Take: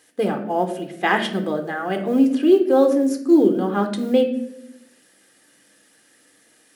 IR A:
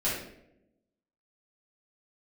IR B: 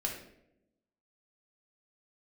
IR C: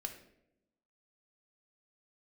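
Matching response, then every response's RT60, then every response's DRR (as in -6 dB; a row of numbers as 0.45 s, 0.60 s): C; 0.85 s, 0.85 s, 0.85 s; -9.5 dB, -0.5 dB, 5.0 dB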